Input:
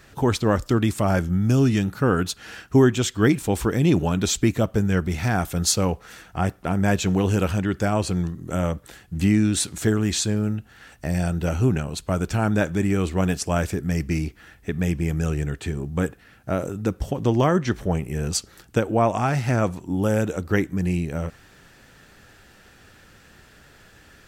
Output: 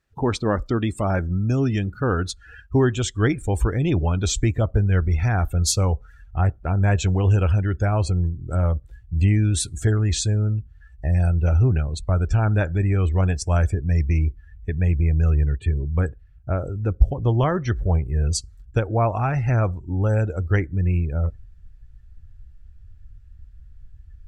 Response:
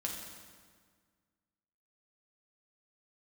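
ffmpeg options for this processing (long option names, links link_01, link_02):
-af "asubboost=boost=11.5:cutoff=62,afftdn=noise_reduction=25:noise_floor=-35,volume=-1dB"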